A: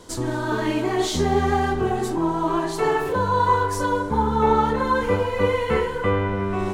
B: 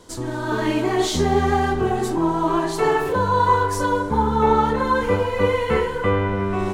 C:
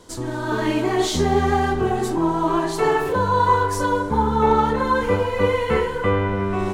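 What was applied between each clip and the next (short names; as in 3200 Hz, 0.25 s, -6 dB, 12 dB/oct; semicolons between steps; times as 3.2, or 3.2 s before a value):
AGC gain up to 5 dB; gain -2.5 dB
hard clip -7 dBFS, distortion -47 dB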